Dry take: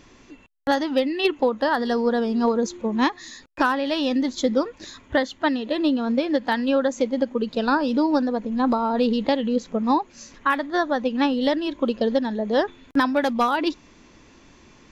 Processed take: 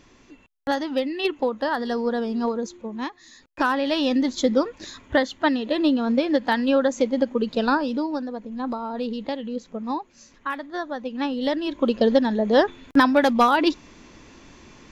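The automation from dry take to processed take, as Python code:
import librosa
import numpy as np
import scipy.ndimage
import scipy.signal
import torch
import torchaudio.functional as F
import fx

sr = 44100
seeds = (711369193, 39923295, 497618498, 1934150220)

y = fx.gain(x, sr, db=fx.line((2.36, -3.0), (3.18, -11.0), (3.77, 1.0), (7.65, 1.0), (8.15, -7.5), (11.03, -7.5), (12.04, 3.5)))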